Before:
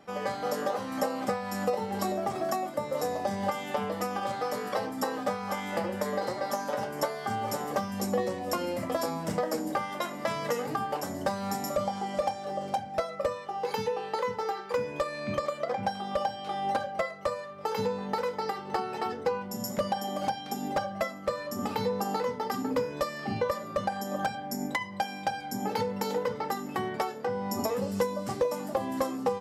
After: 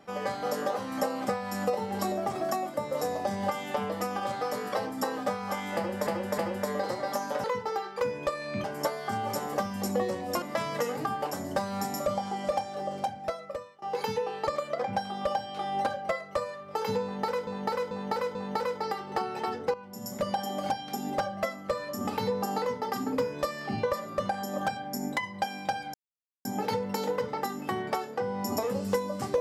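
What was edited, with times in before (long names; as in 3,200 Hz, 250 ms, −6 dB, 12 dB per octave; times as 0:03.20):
0:05.76–0:06.07: repeat, 3 plays
0:08.60–0:10.12: remove
0:12.44–0:13.52: fade out equal-power, to −23.5 dB
0:14.17–0:15.37: move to 0:06.82
0:17.93–0:18.37: repeat, 4 plays
0:19.32–0:19.91: fade in, from −13.5 dB
0:25.52: splice in silence 0.51 s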